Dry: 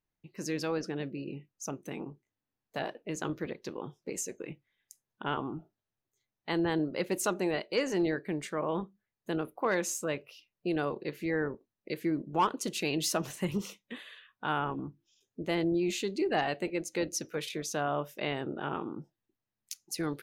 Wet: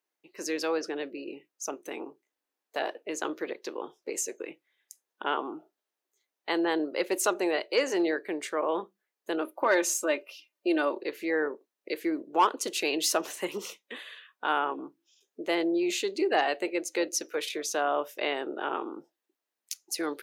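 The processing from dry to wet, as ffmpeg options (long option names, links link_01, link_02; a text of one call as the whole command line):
ffmpeg -i in.wav -filter_complex "[0:a]asettb=1/sr,asplit=3[link_01][link_02][link_03];[link_01]atrim=end=9.414[link_04];[link_02]atrim=start=9.41:end=11,asetpts=PTS-STARTPTS,afade=type=in:duration=0.004:curve=qsin,afade=type=out:start_time=1.586:duration=0.004:curve=qsin,aecho=1:1:3.3:0.65,atrim=end_sample=70119[link_05];[link_03]atrim=start=10.996[link_06];[link_04][link_05]acrossfade=duration=0.004:curve1=hsin:curve2=qsin[link_07];[link_07][link_06]acrossfade=duration=0.004:curve1=qsin:curve2=hsin,highpass=frequency=330:width=0.5412,highpass=frequency=330:width=1.3066,volume=4.5dB" out.wav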